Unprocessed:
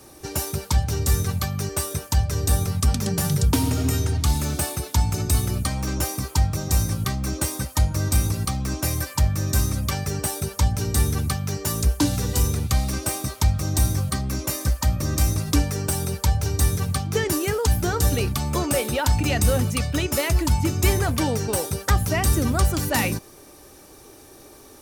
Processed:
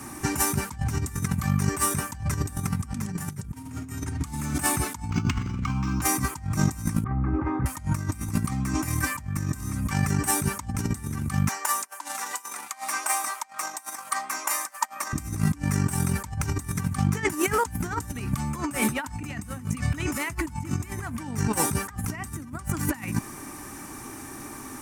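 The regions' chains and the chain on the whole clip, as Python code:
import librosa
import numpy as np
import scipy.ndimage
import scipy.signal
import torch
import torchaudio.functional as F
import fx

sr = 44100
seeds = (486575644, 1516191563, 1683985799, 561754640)

y = fx.chain(x, sr, fx.over_compress(threshold_db=-23.0, ratio=-0.5),
    fx.fixed_phaser(hz=2800.0, stages=8),
    fx.resample_linear(factor=4), at=(5.1, 6.02))
y = fx.chain(y, sr, fx.bessel_lowpass(hz=1100.0, order=4),
    fx.comb(ms=2.4, depth=0.51), at=(7.04, 7.66))
y = fx.chain(y, sr, fx.over_compress(threshold_db=-25.0, ratio=-0.5),
    fx.ladder_highpass(hz=590.0, resonance_pct=35), at=(11.48, 15.13))
y = fx.graphic_eq(y, sr, hz=(125, 250, 500, 1000, 2000, 4000, 8000), db=(5, 12, -11, 10, 9, -7, 8))
y = fx.over_compress(y, sr, threshold_db=-23.0, ratio=-0.5)
y = F.gain(torch.from_numpy(y), -3.5).numpy()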